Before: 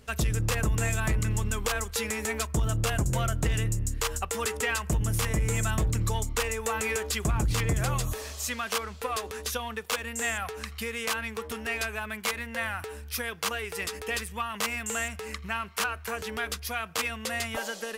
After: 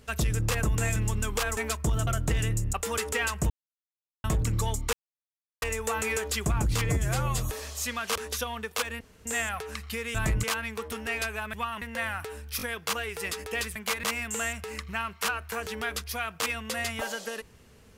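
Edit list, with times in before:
0.96–1.25 s: move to 11.03 s
1.86–2.27 s: delete
2.77–3.22 s: delete
3.88–4.21 s: delete
4.98–5.72 s: mute
6.41 s: insert silence 0.69 s
7.68–8.01 s: stretch 1.5×
8.78–9.29 s: delete
10.14 s: insert room tone 0.25 s
12.13–12.41 s: swap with 14.31–14.59 s
13.17 s: stutter 0.02 s, 3 plays

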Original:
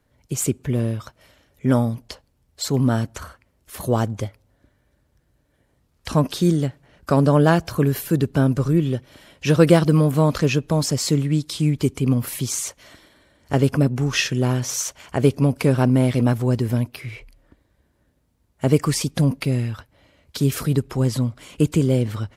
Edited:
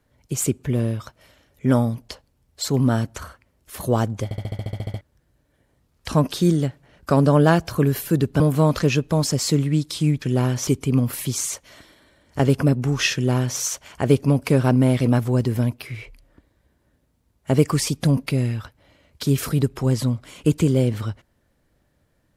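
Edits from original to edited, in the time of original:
4.24 s: stutter in place 0.07 s, 11 plays
8.40–9.99 s: delete
14.28–14.73 s: copy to 11.81 s

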